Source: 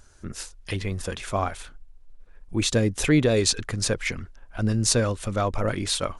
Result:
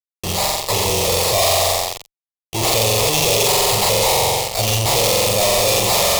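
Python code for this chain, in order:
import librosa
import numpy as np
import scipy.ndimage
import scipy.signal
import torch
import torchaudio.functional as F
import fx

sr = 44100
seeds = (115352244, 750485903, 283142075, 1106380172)

y = fx.sample_hold(x, sr, seeds[0], rate_hz=3000.0, jitter_pct=0)
y = fx.highpass(y, sr, hz=250.0, slope=6)
y = fx.high_shelf(y, sr, hz=5900.0, db=-5.0)
y = fx.room_flutter(y, sr, wall_m=7.7, rt60_s=1.1)
y = fx.fuzz(y, sr, gain_db=47.0, gate_db=-43.0)
y = fx.high_shelf(y, sr, hz=2000.0, db=8.0)
y = fx.fixed_phaser(y, sr, hz=630.0, stages=4)
y = y * librosa.db_to_amplitude(-1.5)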